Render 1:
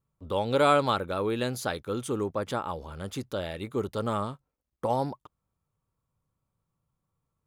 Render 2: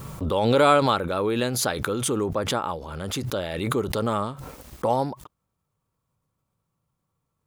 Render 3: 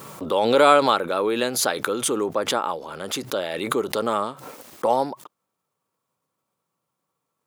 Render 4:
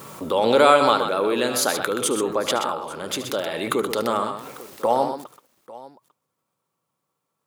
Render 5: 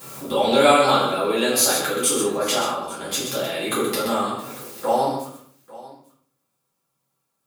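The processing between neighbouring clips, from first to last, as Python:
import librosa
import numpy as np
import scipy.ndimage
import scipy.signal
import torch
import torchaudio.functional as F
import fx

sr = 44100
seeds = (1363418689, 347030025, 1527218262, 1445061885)

y1 = fx.low_shelf(x, sr, hz=63.0, db=-8.0)
y1 = fx.pre_swell(y1, sr, db_per_s=34.0)
y1 = y1 * 10.0 ** (4.0 / 20.0)
y2 = scipy.signal.sosfilt(scipy.signal.butter(2, 290.0, 'highpass', fs=sr, output='sos'), y1)
y2 = y2 * 10.0 ** (3.0 / 20.0)
y3 = fx.echo_multitap(y2, sr, ms=(74, 126, 846), db=(-13.5, -8.0, -19.5))
y4 = fx.high_shelf(y3, sr, hz=3400.0, db=10.0)
y4 = fx.room_shoebox(y4, sr, seeds[0], volume_m3=64.0, walls='mixed', distance_m=2.1)
y4 = y4 * 10.0 ** (-11.0 / 20.0)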